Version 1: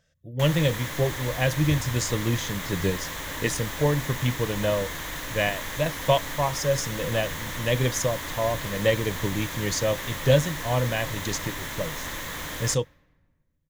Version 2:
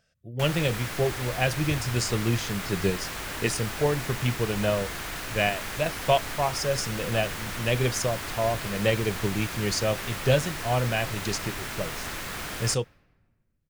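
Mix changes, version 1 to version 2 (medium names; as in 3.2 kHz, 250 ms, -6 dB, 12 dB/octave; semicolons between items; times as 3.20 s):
speech: add bass shelf 140 Hz -4.5 dB; master: remove rippled EQ curve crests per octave 1.1, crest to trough 7 dB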